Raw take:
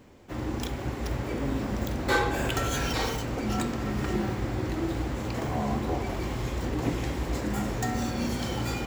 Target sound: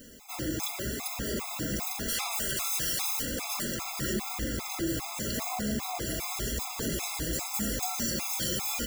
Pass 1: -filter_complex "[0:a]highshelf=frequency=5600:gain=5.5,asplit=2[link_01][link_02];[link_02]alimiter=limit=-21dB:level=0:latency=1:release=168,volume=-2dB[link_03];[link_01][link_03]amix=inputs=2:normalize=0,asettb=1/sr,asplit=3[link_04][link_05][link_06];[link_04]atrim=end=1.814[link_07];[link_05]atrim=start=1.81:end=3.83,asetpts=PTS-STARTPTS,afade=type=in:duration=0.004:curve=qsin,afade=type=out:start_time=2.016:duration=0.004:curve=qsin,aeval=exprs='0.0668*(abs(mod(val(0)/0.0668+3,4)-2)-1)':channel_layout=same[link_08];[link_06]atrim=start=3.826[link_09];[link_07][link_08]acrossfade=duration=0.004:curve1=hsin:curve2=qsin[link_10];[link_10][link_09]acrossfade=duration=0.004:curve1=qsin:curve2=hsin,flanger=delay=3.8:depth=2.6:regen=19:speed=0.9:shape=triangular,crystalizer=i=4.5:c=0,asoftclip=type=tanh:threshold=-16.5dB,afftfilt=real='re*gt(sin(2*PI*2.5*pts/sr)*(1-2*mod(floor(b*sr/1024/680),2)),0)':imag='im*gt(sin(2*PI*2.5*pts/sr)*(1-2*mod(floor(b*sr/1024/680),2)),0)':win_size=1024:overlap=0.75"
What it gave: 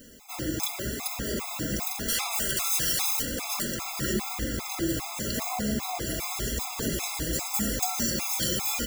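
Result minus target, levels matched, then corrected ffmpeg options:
soft clipping: distortion −7 dB
-filter_complex "[0:a]highshelf=frequency=5600:gain=5.5,asplit=2[link_01][link_02];[link_02]alimiter=limit=-21dB:level=0:latency=1:release=168,volume=-2dB[link_03];[link_01][link_03]amix=inputs=2:normalize=0,asettb=1/sr,asplit=3[link_04][link_05][link_06];[link_04]atrim=end=1.814[link_07];[link_05]atrim=start=1.81:end=3.83,asetpts=PTS-STARTPTS,afade=type=in:duration=0.004:curve=qsin,afade=type=out:start_time=2.016:duration=0.004:curve=qsin,aeval=exprs='0.0668*(abs(mod(val(0)/0.0668+3,4)-2)-1)':channel_layout=same[link_08];[link_06]atrim=start=3.826[link_09];[link_07][link_08]acrossfade=duration=0.004:curve1=hsin:curve2=qsin[link_10];[link_10][link_09]acrossfade=duration=0.004:curve1=qsin:curve2=hsin,flanger=delay=3.8:depth=2.6:regen=19:speed=0.9:shape=triangular,crystalizer=i=4.5:c=0,asoftclip=type=tanh:threshold=-24.5dB,afftfilt=real='re*gt(sin(2*PI*2.5*pts/sr)*(1-2*mod(floor(b*sr/1024/680),2)),0)':imag='im*gt(sin(2*PI*2.5*pts/sr)*(1-2*mod(floor(b*sr/1024/680),2)),0)':win_size=1024:overlap=0.75"

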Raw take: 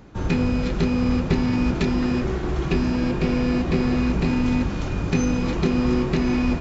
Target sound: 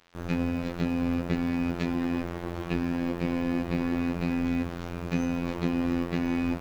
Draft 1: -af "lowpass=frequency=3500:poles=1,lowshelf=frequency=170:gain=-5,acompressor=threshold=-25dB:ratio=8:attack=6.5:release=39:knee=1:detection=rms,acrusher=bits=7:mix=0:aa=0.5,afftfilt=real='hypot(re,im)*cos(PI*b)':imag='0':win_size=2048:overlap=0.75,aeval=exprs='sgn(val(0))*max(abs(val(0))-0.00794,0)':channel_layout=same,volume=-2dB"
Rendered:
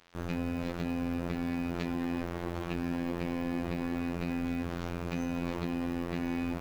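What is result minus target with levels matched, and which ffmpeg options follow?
downward compressor: peak gain reduction +9 dB
-af "lowpass=frequency=3500:poles=1,lowshelf=frequency=170:gain=-5,acrusher=bits=7:mix=0:aa=0.5,afftfilt=real='hypot(re,im)*cos(PI*b)':imag='0':win_size=2048:overlap=0.75,aeval=exprs='sgn(val(0))*max(abs(val(0))-0.00794,0)':channel_layout=same,volume=-2dB"

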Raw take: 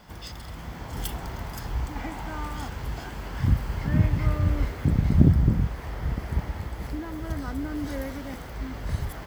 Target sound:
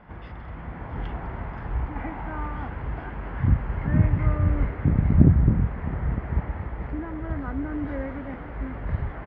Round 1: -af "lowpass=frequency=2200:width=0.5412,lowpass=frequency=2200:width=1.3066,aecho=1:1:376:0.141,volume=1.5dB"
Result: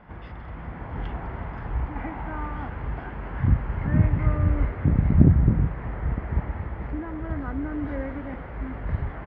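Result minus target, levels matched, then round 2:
echo 284 ms early
-af "lowpass=frequency=2200:width=0.5412,lowpass=frequency=2200:width=1.3066,aecho=1:1:660:0.141,volume=1.5dB"

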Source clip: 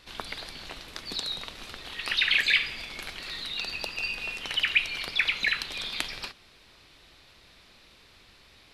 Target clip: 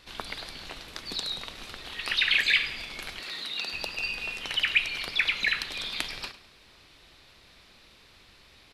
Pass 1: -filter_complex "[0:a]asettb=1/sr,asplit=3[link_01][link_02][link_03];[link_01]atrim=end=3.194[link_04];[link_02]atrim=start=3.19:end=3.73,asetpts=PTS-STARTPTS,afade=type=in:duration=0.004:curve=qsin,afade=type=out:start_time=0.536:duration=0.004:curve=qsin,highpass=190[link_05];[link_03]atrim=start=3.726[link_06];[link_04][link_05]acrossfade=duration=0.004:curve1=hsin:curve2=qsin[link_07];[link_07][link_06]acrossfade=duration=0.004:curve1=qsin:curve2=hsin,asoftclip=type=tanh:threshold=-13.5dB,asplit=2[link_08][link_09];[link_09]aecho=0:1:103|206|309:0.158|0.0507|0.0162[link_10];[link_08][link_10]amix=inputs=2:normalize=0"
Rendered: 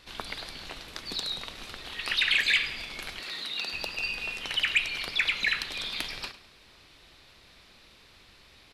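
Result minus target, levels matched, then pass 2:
soft clipping: distortion +16 dB
-filter_complex "[0:a]asettb=1/sr,asplit=3[link_01][link_02][link_03];[link_01]atrim=end=3.194[link_04];[link_02]atrim=start=3.19:end=3.73,asetpts=PTS-STARTPTS,afade=type=in:duration=0.004:curve=qsin,afade=type=out:start_time=0.536:duration=0.004:curve=qsin,highpass=190[link_05];[link_03]atrim=start=3.726[link_06];[link_04][link_05]acrossfade=duration=0.004:curve1=hsin:curve2=qsin[link_07];[link_07][link_06]acrossfade=duration=0.004:curve1=qsin:curve2=hsin,asoftclip=type=tanh:threshold=-3.5dB,asplit=2[link_08][link_09];[link_09]aecho=0:1:103|206|309:0.158|0.0507|0.0162[link_10];[link_08][link_10]amix=inputs=2:normalize=0"

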